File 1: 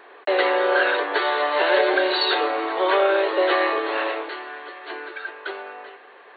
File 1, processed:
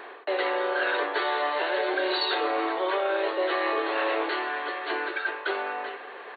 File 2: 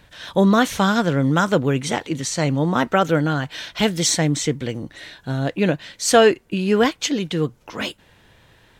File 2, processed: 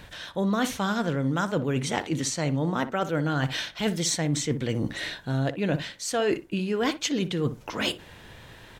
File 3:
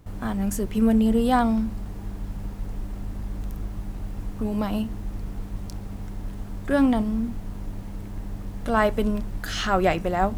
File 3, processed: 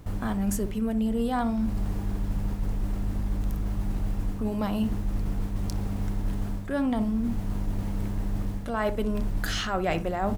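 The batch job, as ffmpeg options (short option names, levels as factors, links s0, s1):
-filter_complex "[0:a]areverse,acompressor=threshold=0.0316:ratio=6,areverse,asplit=2[s0][s1];[s1]adelay=60,lowpass=f=1200:p=1,volume=0.282,asplit=2[s2][s3];[s3]adelay=60,lowpass=f=1200:p=1,volume=0.18[s4];[s0][s2][s4]amix=inputs=3:normalize=0,volume=1.88"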